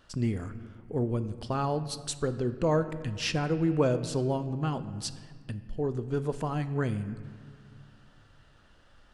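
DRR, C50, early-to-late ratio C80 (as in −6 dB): 11.0 dB, 12.5 dB, 13.5 dB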